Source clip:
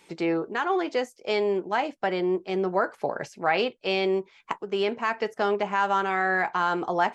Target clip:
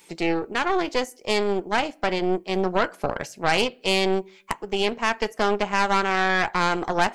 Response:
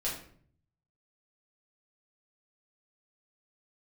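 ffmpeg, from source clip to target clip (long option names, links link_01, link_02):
-filter_complex "[0:a]asplit=2[link_01][link_02];[1:a]atrim=start_sample=2205[link_03];[link_02][link_03]afir=irnorm=-1:irlink=0,volume=-24.5dB[link_04];[link_01][link_04]amix=inputs=2:normalize=0,aeval=exprs='0.398*(cos(1*acos(clip(val(0)/0.398,-1,1)))-cos(1*PI/2))+0.0631*(cos(6*acos(clip(val(0)/0.398,-1,1)))-cos(6*PI/2))':channel_layout=same,aemphasis=mode=production:type=50kf"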